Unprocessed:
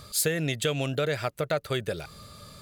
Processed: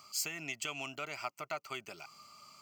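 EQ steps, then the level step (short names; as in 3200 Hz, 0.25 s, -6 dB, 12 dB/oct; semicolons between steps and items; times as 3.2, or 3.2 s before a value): HPF 440 Hz 12 dB/oct; fixed phaser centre 2500 Hz, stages 8; -3.5 dB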